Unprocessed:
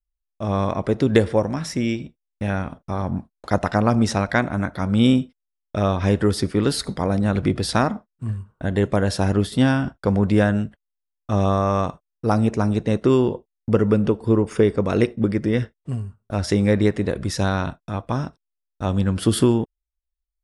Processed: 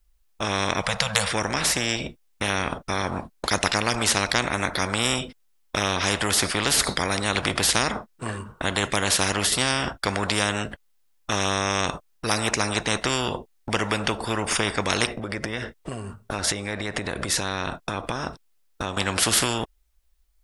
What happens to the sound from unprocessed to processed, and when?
0:00.81–0:01.32: time-frequency box erased 210–460 Hz
0:15.10–0:18.97: downward compressor, threshold −31 dBFS
whole clip: every bin compressed towards the loudest bin 4 to 1; level +2 dB

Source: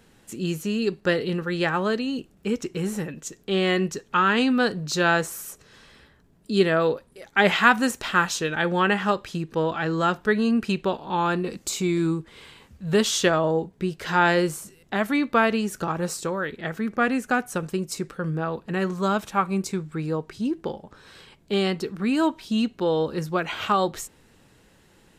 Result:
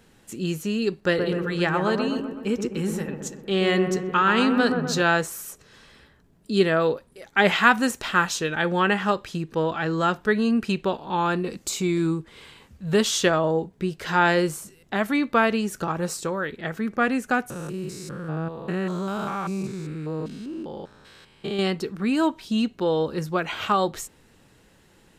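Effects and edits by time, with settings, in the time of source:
0:01.02–0:05.02: delay with a low-pass on its return 126 ms, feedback 55%, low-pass 1,300 Hz, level −4.5 dB
0:17.50–0:21.59: spectrum averaged block by block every 200 ms

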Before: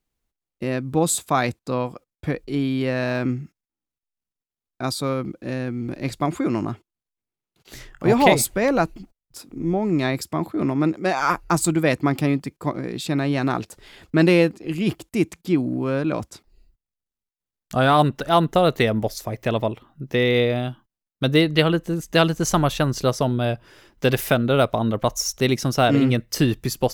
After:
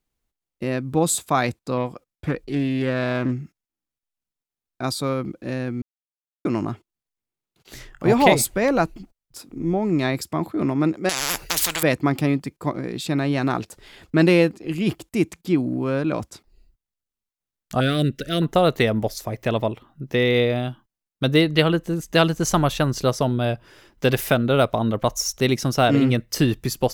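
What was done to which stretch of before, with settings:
0:01.77–0:03.32: highs frequency-modulated by the lows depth 0.2 ms
0:05.82–0:06.45: silence
0:11.09–0:11.83: every bin compressed towards the loudest bin 10 to 1
0:17.80–0:18.42: Butterworth band-reject 910 Hz, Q 0.8

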